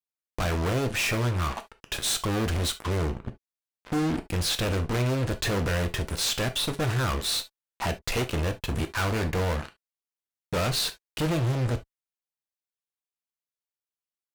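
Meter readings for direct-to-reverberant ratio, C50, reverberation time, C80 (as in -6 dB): 7.5 dB, 16.5 dB, no single decay rate, 39.5 dB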